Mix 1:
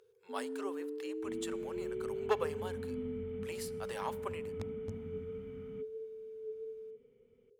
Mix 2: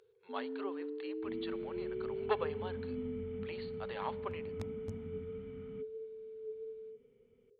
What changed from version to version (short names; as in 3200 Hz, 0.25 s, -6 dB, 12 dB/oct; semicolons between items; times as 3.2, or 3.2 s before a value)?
speech: add Chebyshev low-pass 4500 Hz, order 10; master: add bell 490 Hz -2.5 dB 0.24 oct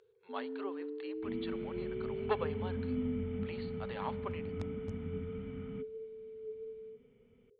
second sound +6.5 dB; master: add air absorption 51 m